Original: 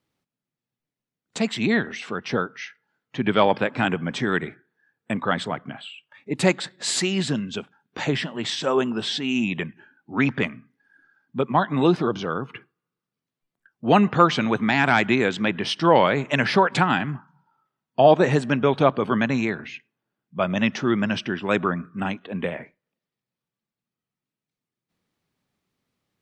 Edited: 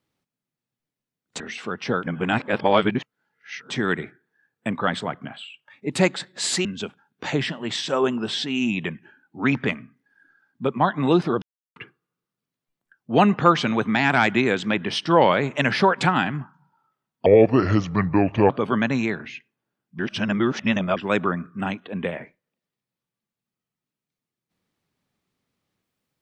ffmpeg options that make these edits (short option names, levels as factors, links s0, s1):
-filter_complex "[0:a]asplit=11[s0][s1][s2][s3][s4][s5][s6][s7][s8][s9][s10];[s0]atrim=end=1.402[s11];[s1]atrim=start=1.838:end=2.472[s12];[s2]atrim=start=2.468:end=4.142,asetpts=PTS-STARTPTS,areverse[s13];[s3]atrim=start=4.138:end=7.092[s14];[s4]atrim=start=7.388:end=12.16,asetpts=PTS-STARTPTS,afade=t=out:st=4.768:d=0.004:c=hsin[s15];[s5]atrim=start=12.16:end=12.5,asetpts=PTS-STARTPTS,volume=0[s16];[s6]atrim=start=12.5:end=18.004,asetpts=PTS-STARTPTS,afade=t=in:d=0.004:c=hsin[s17];[s7]atrim=start=18:end=18.89,asetpts=PTS-STARTPTS,asetrate=31752,aresample=44100,atrim=end_sample=54512,asetpts=PTS-STARTPTS[s18];[s8]atrim=start=18.886:end=20.382[s19];[s9]atrim=start=20.378:end=21.362,asetpts=PTS-STARTPTS,areverse[s20];[s10]atrim=start=21.358[s21];[s11][s12]acrossfade=d=0.004:c1=hsin:c2=hsin[s22];[s22][s13]acrossfade=d=0.004:c1=hsin:c2=hsin[s23];[s23][s14]acrossfade=d=0.004:c1=hsin:c2=hsin[s24];[s15][s16][s17]concat=n=3:v=0:a=1[s25];[s24][s25]acrossfade=d=0.004:c1=hsin:c2=hsin[s26];[s26][s18]acrossfade=d=0.004:c1=hsin:c2=hsin[s27];[s27][s19]acrossfade=d=0.004:c1=hsin:c2=hsin[s28];[s28][s20]acrossfade=d=0.004:c1=hsin:c2=hsin[s29];[s29][s21]acrossfade=d=0.004:c1=hsin:c2=hsin"